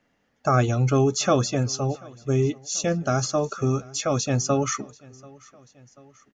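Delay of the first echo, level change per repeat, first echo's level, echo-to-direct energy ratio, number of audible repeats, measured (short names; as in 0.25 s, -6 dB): 0.737 s, -4.5 dB, -24.0 dB, -22.5 dB, 2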